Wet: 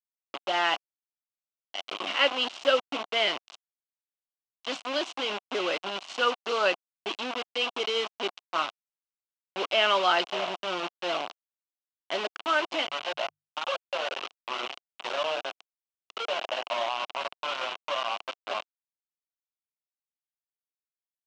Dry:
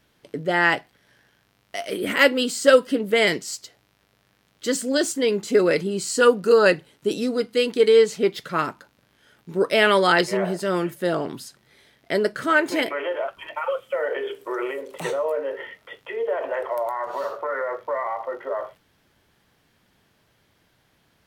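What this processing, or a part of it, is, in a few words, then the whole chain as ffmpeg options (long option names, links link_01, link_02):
hand-held game console: -filter_complex "[0:a]acrusher=bits=3:mix=0:aa=0.000001,highpass=430,equalizer=frequency=450:width_type=q:width=4:gain=-9,equalizer=frequency=720:width_type=q:width=4:gain=5,equalizer=frequency=1100:width_type=q:width=4:gain=4,equalizer=frequency=1800:width_type=q:width=4:gain=-8,equalizer=frequency=2900:width_type=q:width=4:gain=8,equalizer=frequency=4700:width_type=q:width=4:gain=-4,lowpass=frequency=5000:width=0.5412,lowpass=frequency=5000:width=1.3066,asettb=1/sr,asplit=3[link_01][link_02][link_03];[link_01]atrim=end=12.794[link_04];[link_02]atrim=start=12.79:end=13.61,asetpts=PTS-STARTPTS,afade=type=in:duration=0.004:curve=qsin,afade=type=out:start_time=0.816:duration=0.004:curve=qsin,bandreject=frequency=50:width_type=h:width=6,bandreject=frequency=100:width_type=h:width=6,bandreject=frequency=150:width_type=h:width=6[link_05];[link_03]atrim=start=13.606[link_06];[link_04][link_05]acrossfade=duration=0.004:curve1=hsin:curve2=qsin[link_07];[link_07][link_06]acrossfade=duration=0.004:curve1=qsin:curve2=hsin,volume=-6dB"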